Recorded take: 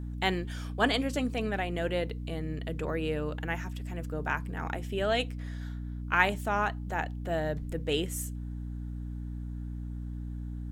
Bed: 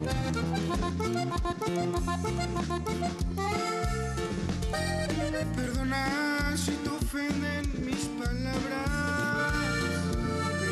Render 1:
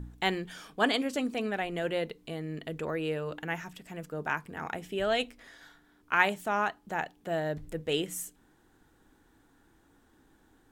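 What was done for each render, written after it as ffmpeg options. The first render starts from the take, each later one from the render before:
-af "bandreject=f=60:t=h:w=4,bandreject=f=120:t=h:w=4,bandreject=f=180:t=h:w=4,bandreject=f=240:t=h:w=4,bandreject=f=300:t=h:w=4"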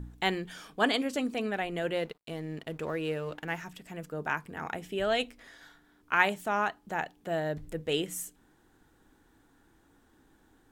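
-filter_complex "[0:a]asettb=1/sr,asplit=3[s0][s1][s2];[s0]atrim=end=1.954[s3];[s1]atrim=start=1.95:end=3.62,asetpts=PTS-STARTPTS,afade=t=in:d=0.004:c=qsin,afade=t=out:st=1.666:d=0.004:c=qsin,aeval=exprs='sgn(val(0))*max(abs(val(0))-0.00178,0)':c=same[s4];[s2]atrim=start=3.616[s5];[s3][s4]acrossfade=d=0.004:c1=hsin:c2=qsin[s6];[s6][s5]acrossfade=d=0.004:c1=qsin:c2=hsin"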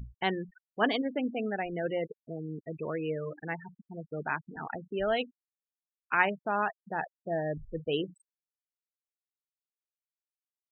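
-af "aemphasis=mode=reproduction:type=50kf,afftfilt=real='re*gte(hypot(re,im),0.0282)':imag='im*gte(hypot(re,im),0.0282)':win_size=1024:overlap=0.75"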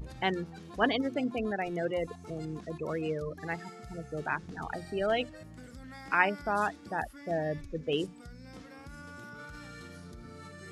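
-filter_complex "[1:a]volume=0.133[s0];[0:a][s0]amix=inputs=2:normalize=0"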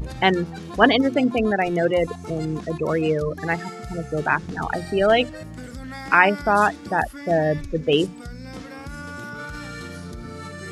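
-af "volume=3.98,alimiter=limit=0.891:level=0:latency=1"

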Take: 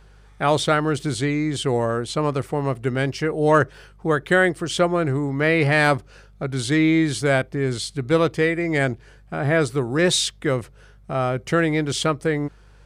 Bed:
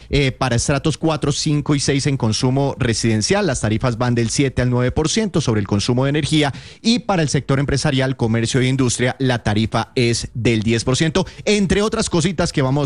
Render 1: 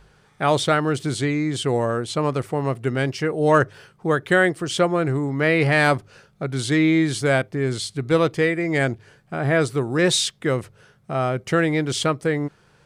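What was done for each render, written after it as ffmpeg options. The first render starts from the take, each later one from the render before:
-af "bandreject=f=50:t=h:w=4,bandreject=f=100:t=h:w=4"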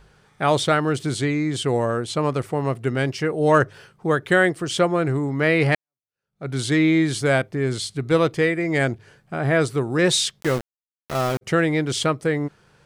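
-filter_complex "[0:a]asplit=3[s0][s1][s2];[s0]afade=t=out:st=10.4:d=0.02[s3];[s1]aeval=exprs='val(0)*gte(abs(val(0)),0.0562)':c=same,afade=t=in:st=10.4:d=0.02,afade=t=out:st=11.41:d=0.02[s4];[s2]afade=t=in:st=11.41:d=0.02[s5];[s3][s4][s5]amix=inputs=3:normalize=0,asplit=2[s6][s7];[s6]atrim=end=5.75,asetpts=PTS-STARTPTS,afade=t=out:st=5.746:d=0.004:c=hsin[s8];[s7]atrim=start=5.75,asetpts=PTS-STARTPTS,afade=t=in:d=0.73:c=exp[s9];[s8][s9]concat=n=2:v=0:a=1"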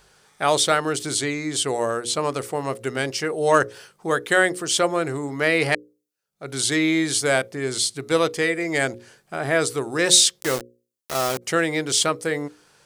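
-af "bass=f=250:g=-10,treble=f=4000:g=10,bandreject=f=60:t=h:w=6,bandreject=f=120:t=h:w=6,bandreject=f=180:t=h:w=6,bandreject=f=240:t=h:w=6,bandreject=f=300:t=h:w=6,bandreject=f=360:t=h:w=6,bandreject=f=420:t=h:w=6,bandreject=f=480:t=h:w=6,bandreject=f=540:t=h:w=6"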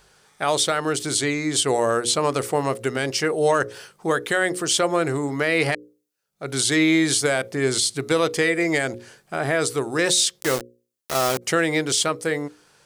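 -af "dynaudnorm=f=110:g=21:m=3.76,alimiter=limit=0.335:level=0:latency=1:release=96"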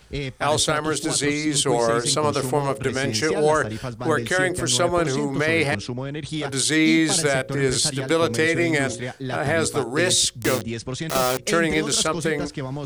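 -filter_complex "[1:a]volume=0.237[s0];[0:a][s0]amix=inputs=2:normalize=0"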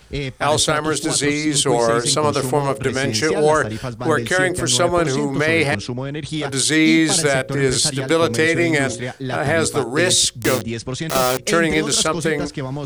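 -af "volume=1.5"

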